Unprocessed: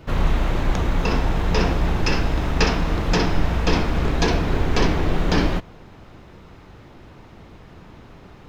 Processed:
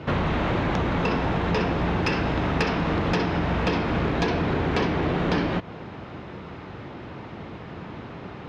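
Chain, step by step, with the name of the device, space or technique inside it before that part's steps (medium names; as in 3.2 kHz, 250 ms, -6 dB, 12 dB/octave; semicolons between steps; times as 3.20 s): AM radio (band-pass 100–3500 Hz; compression, threshold -28 dBFS, peak gain reduction 12 dB; saturation -20.5 dBFS, distortion -24 dB); trim +8 dB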